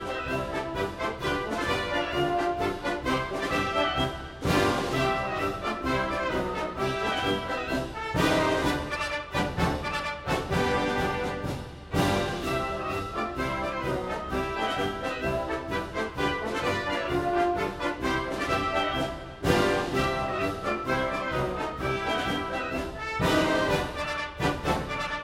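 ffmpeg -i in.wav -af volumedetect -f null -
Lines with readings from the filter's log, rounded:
mean_volume: -28.3 dB
max_volume: -8.3 dB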